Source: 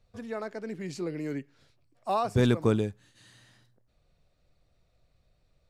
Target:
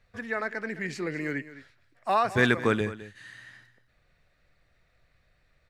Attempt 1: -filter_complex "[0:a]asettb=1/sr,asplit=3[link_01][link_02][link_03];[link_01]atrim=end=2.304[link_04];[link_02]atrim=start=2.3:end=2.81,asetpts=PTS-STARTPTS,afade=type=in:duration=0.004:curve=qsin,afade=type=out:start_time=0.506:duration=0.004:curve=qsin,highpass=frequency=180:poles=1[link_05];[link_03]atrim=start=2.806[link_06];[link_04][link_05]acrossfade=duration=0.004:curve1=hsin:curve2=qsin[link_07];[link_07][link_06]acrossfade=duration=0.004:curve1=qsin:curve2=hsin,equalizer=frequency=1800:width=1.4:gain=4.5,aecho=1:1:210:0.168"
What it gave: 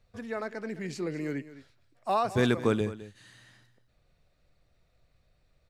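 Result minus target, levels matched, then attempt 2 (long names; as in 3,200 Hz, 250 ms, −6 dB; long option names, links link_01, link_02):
2,000 Hz band −7.0 dB
-filter_complex "[0:a]asettb=1/sr,asplit=3[link_01][link_02][link_03];[link_01]atrim=end=2.304[link_04];[link_02]atrim=start=2.3:end=2.81,asetpts=PTS-STARTPTS,afade=type=in:duration=0.004:curve=qsin,afade=type=out:start_time=0.506:duration=0.004:curve=qsin,highpass=frequency=180:poles=1[link_05];[link_03]atrim=start=2.806[link_06];[link_04][link_05]acrossfade=duration=0.004:curve1=hsin:curve2=qsin[link_07];[link_07][link_06]acrossfade=duration=0.004:curve1=qsin:curve2=hsin,equalizer=frequency=1800:width=1.4:gain=16,aecho=1:1:210:0.168"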